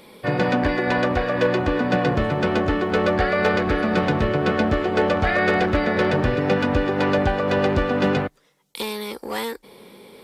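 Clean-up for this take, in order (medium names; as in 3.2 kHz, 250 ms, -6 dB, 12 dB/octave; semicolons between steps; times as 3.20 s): clip repair -10.5 dBFS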